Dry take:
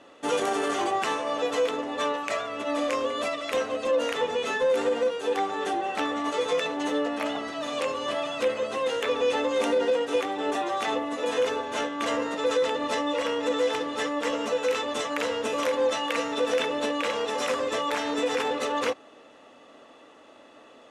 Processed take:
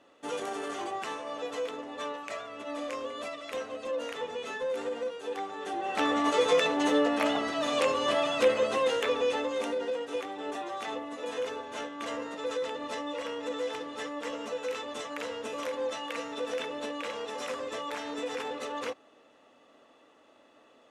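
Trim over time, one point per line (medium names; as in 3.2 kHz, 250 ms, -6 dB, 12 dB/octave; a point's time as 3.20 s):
5.63 s -9 dB
6.10 s +2 dB
8.68 s +2 dB
9.78 s -8.5 dB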